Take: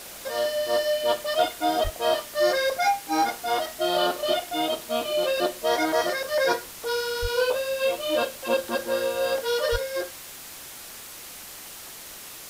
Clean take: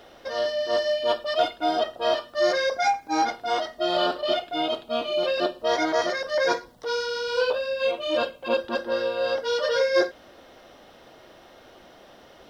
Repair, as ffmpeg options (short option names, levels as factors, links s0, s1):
-filter_complex "[0:a]asplit=3[s0][s1][s2];[s0]afade=t=out:st=1.83:d=0.02[s3];[s1]highpass=f=140:w=0.5412,highpass=f=140:w=1.3066,afade=t=in:st=1.83:d=0.02,afade=t=out:st=1.95:d=0.02[s4];[s2]afade=t=in:st=1.95:d=0.02[s5];[s3][s4][s5]amix=inputs=3:normalize=0,asplit=3[s6][s7][s8];[s6]afade=t=out:st=7.21:d=0.02[s9];[s7]highpass=f=140:w=0.5412,highpass=f=140:w=1.3066,afade=t=in:st=7.21:d=0.02,afade=t=out:st=7.33:d=0.02[s10];[s8]afade=t=in:st=7.33:d=0.02[s11];[s9][s10][s11]amix=inputs=3:normalize=0,asplit=3[s12][s13][s14];[s12]afade=t=out:st=9.71:d=0.02[s15];[s13]highpass=f=140:w=0.5412,highpass=f=140:w=1.3066,afade=t=in:st=9.71:d=0.02,afade=t=out:st=9.83:d=0.02[s16];[s14]afade=t=in:st=9.83:d=0.02[s17];[s15][s16][s17]amix=inputs=3:normalize=0,afwtdn=0.01,asetnsamples=n=441:p=0,asendcmd='9.76 volume volume 9dB',volume=1"